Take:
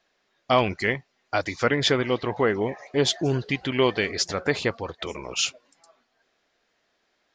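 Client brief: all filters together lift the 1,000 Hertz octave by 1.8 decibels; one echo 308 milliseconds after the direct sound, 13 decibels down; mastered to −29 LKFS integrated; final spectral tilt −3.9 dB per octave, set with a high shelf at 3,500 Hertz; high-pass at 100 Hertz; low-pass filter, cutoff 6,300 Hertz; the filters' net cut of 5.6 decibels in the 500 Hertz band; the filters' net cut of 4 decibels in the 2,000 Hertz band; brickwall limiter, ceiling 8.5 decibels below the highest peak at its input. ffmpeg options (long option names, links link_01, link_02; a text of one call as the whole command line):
ffmpeg -i in.wav -af "highpass=100,lowpass=6300,equalizer=frequency=500:width_type=o:gain=-8.5,equalizer=frequency=1000:width_type=o:gain=6.5,equalizer=frequency=2000:width_type=o:gain=-8,highshelf=frequency=3500:gain=5.5,alimiter=limit=-16.5dB:level=0:latency=1,aecho=1:1:308:0.224,volume=0.5dB" out.wav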